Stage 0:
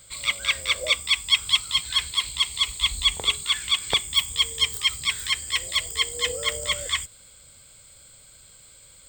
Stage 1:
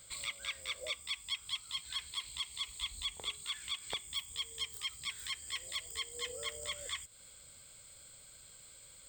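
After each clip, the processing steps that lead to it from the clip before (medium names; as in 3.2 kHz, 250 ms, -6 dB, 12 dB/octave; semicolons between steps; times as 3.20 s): bass shelf 150 Hz -4 dB; compression 3:1, threshold -35 dBFS, peak gain reduction 15.5 dB; trim -5.5 dB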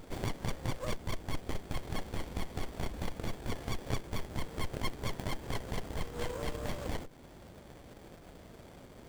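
sliding maximum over 33 samples; trim +9 dB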